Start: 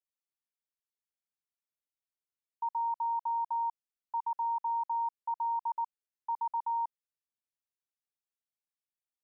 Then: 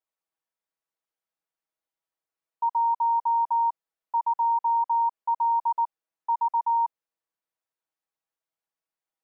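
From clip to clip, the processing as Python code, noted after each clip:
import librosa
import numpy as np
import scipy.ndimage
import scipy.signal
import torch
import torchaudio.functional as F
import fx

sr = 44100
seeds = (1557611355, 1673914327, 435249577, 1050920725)

y = fx.peak_eq(x, sr, hz=770.0, db=12.0, octaves=3.0)
y = y + 0.81 * np.pad(y, (int(6.2 * sr / 1000.0), 0))[:len(y)]
y = y * librosa.db_to_amplitude(-5.0)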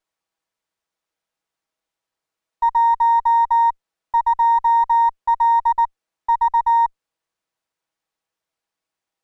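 y = fx.running_max(x, sr, window=3)
y = y * librosa.db_to_amplitude(8.0)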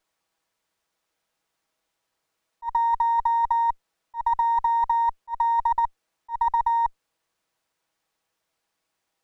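y = fx.over_compress(x, sr, threshold_db=-21.0, ratio=-1.0)
y = fx.auto_swell(y, sr, attack_ms=134.0)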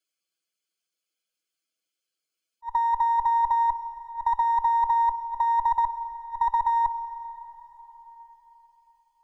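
y = fx.bin_expand(x, sr, power=1.5)
y = fx.rev_plate(y, sr, seeds[0], rt60_s=4.4, hf_ratio=0.65, predelay_ms=0, drr_db=12.0)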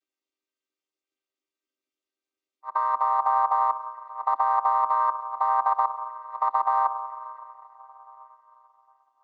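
y = fx.chord_vocoder(x, sr, chord='minor triad', root=60)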